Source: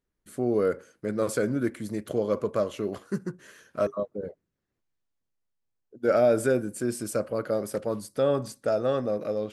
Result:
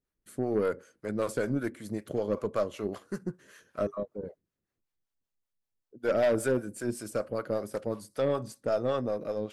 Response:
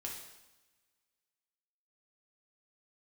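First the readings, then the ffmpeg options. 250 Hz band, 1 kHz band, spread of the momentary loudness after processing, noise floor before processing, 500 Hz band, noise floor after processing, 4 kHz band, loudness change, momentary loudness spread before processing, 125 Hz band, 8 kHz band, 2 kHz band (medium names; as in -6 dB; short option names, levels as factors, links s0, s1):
-4.0 dB, -3.0 dB, 11 LU, -82 dBFS, -4.0 dB, under -85 dBFS, -3.0 dB, -4.0 dB, 10 LU, -3.0 dB, -5.0 dB, -2.0 dB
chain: -filter_complex "[0:a]acrossover=split=490[s0][s1];[s0]aeval=exprs='val(0)*(1-0.7/2+0.7/2*cos(2*PI*5.2*n/s))':c=same[s2];[s1]aeval=exprs='val(0)*(1-0.7/2-0.7/2*cos(2*PI*5.2*n/s))':c=same[s3];[s2][s3]amix=inputs=2:normalize=0,aeval=exprs='0.2*(cos(1*acos(clip(val(0)/0.2,-1,1)))-cos(1*PI/2))+0.0398*(cos(5*acos(clip(val(0)/0.2,-1,1)))-cos(5*PI/2))+0.00708*(cos(6*acos(clip(val(0)/0.2,-1,1)))-cos(6*PI/2))+0.0224*(cos(7*acos(clip(val(0)/0.2,-1,1)))-cos(7*PI/2))':c=same,volume=0.75"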